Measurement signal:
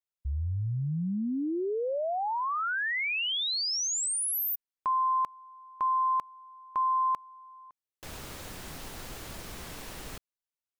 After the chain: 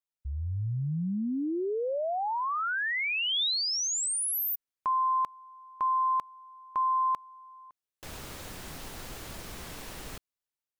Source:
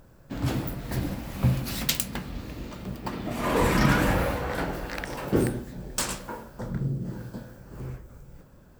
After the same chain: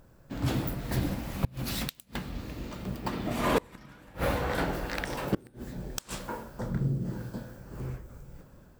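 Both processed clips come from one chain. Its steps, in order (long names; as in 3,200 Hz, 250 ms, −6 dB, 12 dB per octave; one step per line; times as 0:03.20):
automatic gain control gain up to 3.5 dB
dynamic equaliser 3,600 Hz, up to +3 dB, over −47 dBFS, Q 3.4
gate with flip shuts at −10 dBFS, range −30 dB
level −3.5 dB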